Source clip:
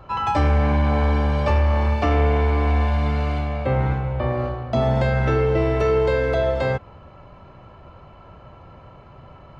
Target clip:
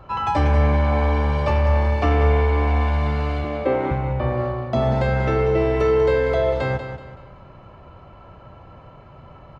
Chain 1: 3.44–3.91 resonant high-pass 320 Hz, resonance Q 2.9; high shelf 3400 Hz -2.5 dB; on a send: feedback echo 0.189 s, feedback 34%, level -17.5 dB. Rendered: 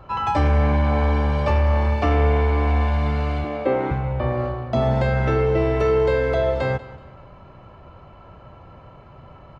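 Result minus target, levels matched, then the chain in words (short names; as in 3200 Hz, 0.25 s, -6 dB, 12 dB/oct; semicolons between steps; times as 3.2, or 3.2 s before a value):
echo-to-direct -8.5 dB
3.44–3.91 resonant high-pass 320 Hz, resonance Q 2.9; high shelf 3400 Hz -2.5 dB; on a send: feedback echo 0.189 s, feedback 34%, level -9 dB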